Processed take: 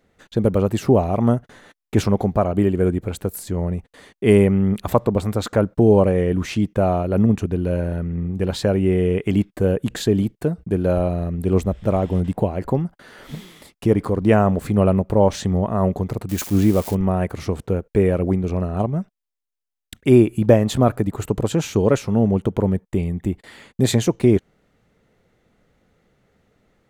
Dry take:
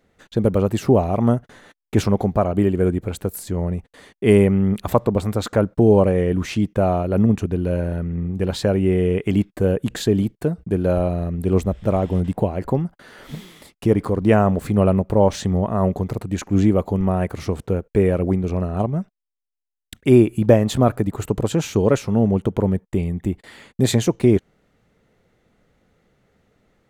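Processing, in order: 16.29–16.95 s: zero-crossing glitches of -21 dBFS

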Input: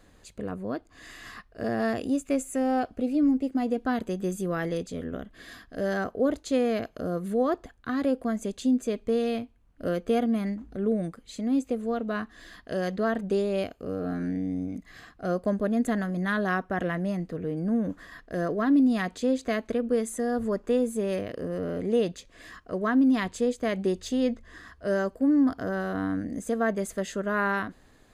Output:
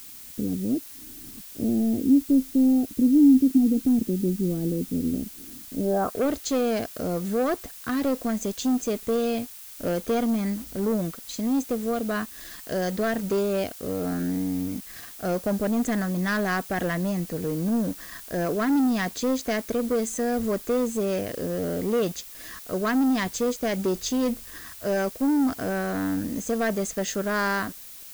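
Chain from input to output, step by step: waveshaping leveller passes 2; low-pass sweep 280 Hz -> 6.4 kHz, 5.83–6.33 s; added noise blue -39 dBFS; trim -4 dB

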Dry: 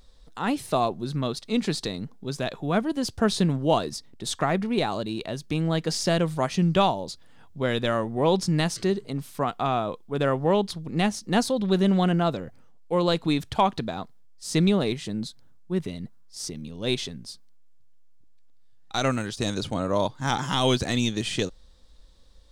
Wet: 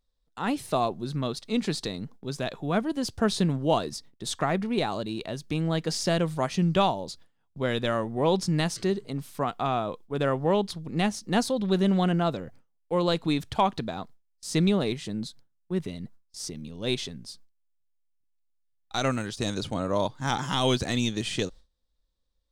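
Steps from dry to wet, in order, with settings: gate with hold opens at -36 dBFS; trim -2 dB

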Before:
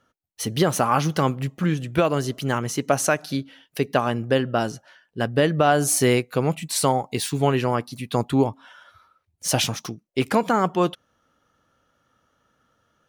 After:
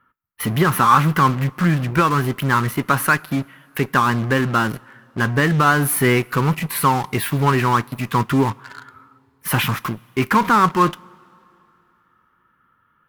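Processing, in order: FFT filter 200 Hz 0 dB, 370 Hz -2 dB, 670 Hz -13 dB, 1 kHz +8 dB, 2.1 kHz +4 dB, 6.8 kHz -26 dB, 12 kHz +2 dB; in parallel at -12 dB: fuzz box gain 40 dB, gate -37 dBFS; on the sum: two-slope reverb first 0.2 s, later 2.9 s, from -22 dB, DRR 16 dB; trim +1 dB

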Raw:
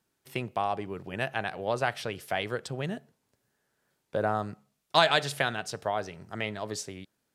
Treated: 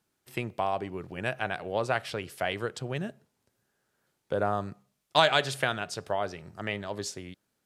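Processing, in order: speed mistake 25 fps video run at 24 fps

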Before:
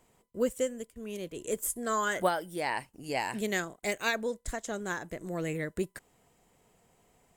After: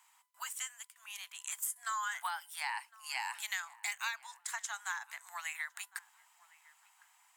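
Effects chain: steep high-pass 840 Hz 72 dB/octave; compression 6:1, threshold -38 dBFS, peak gain reduction 12.5 dB; filtered feedback delay 1058 ms, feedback 32%, low-pass 2 kHz, level -21 dB; trim +3.5 dB

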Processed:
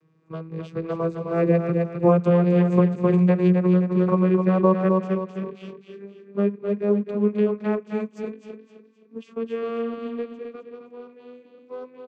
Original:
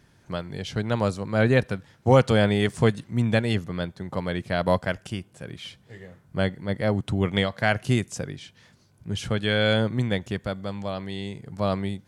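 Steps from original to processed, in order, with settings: vocoder on a note that slides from D#3, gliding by +9 st; Doppler pass-by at 3.38 s, 7 m/s, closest 5.3 m; feedback delay 260 ms, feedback 37%, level -6 dB; dynamic bell 3.8 kHz, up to -6 dB, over -59 dBFS, Q 1.1; in parallel at -8.5 dB: crossover distortion -50 dBFS; on the sum: compression 6:1, threshold -24 dBFS, peak gain reduction 10 dB; small resonant body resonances 420/1100/2400 Hz, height 13 dB, ringing for 25 ms; trim +7 dB

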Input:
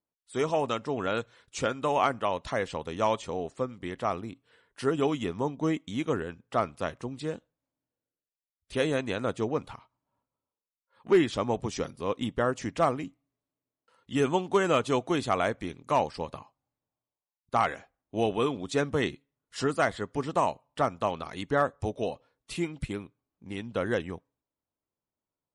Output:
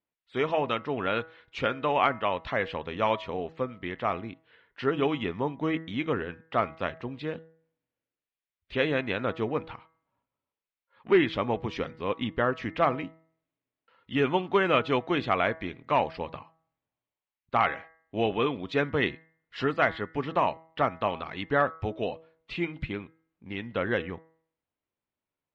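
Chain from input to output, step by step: low-pass 3.8 kHz 24 dB/octave; peaking EQ 2.2 kHz +6 dB 1.2 oct; de-hum 161.7 Hz, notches 13

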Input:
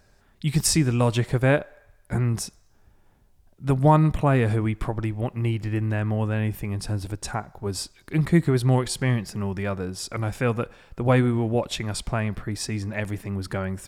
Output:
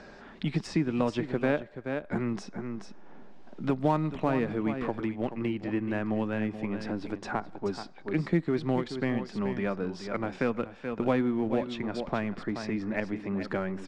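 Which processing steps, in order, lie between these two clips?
Bessel low-pass 3.6 kHz, order 4; resonant low shelf 150 Hz -12 dB, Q 1.5; in parallel at -7 dB: hysteresis with a dead band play -17 dBFS; on the sum: delay 428 ms -12 dB; three bands compressed up and down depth 70%; trim -6.5 dB

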